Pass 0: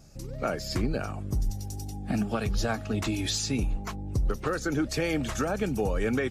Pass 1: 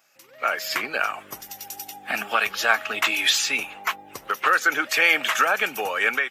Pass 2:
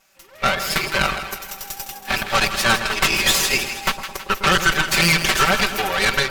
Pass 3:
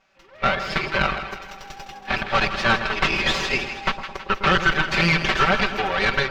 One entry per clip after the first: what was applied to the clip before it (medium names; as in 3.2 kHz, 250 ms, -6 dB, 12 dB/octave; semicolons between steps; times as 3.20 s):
high-pass 1.4 kHz 12 dB/octave; high-order bell 6.5 kHz -12 dB; level rider gain up to 12 dB; trim +6.5 dB
comb filter that takes the minimum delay 5.2 ms; Chebyshev shaper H 5 -16 dB, 8 -13 dB, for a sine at -6 dBFS; two-band feedback delay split 1.1 kHz, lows 108 ms, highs 161 ms, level -10 dB
distance through air 210 m